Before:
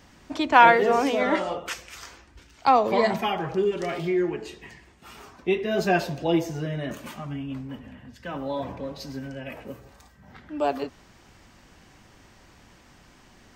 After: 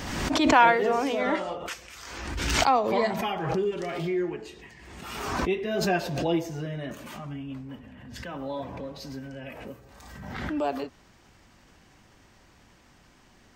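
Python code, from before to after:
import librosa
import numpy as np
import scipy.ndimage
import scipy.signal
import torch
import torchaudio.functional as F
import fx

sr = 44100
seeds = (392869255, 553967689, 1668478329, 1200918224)

y = fx.pre_swell(x, sr, db_per_s=37.0)
y = F.gain(torch.from_numpy(y), -4.0).numpy()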